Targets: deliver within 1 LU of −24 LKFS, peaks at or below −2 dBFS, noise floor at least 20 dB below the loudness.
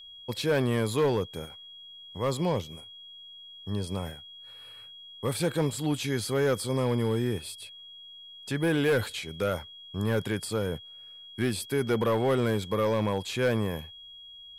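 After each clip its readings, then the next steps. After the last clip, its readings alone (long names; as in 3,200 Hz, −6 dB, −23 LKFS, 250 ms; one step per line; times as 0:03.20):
share of clipped samples 1.1%; peaks flattened at −19.5 dBFS; interfering tone 3,300 Hz; level of the tone −45 dBFS; integrated loudness −29.0 LKFS; sample peak −19.5 dBFS; target loudness −24.0 LKFS
→ clipped peaks rebuilt −19.5 dBFS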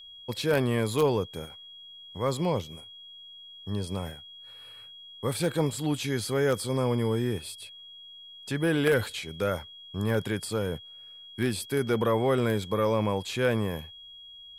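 share of clipped samples 0.0%; interfering tone 3,300 Hz; level of the tone −45 dBFS
→ notch filter 3,300 Hz, Q 30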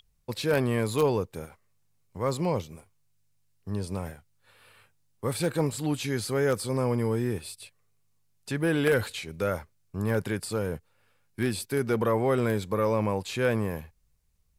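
interfering tone none found; integrated loudness −28.5 LKFS; sample peak −10.5 dBFS; target loudness −24.0 LKFS
→ level +4.5 dB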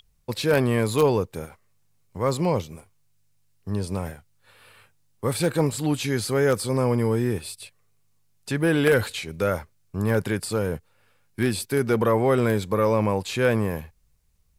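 integrated loudness −24.0 LKFS; sample peak −6.0 dBFS; background noise floor −64 dBFS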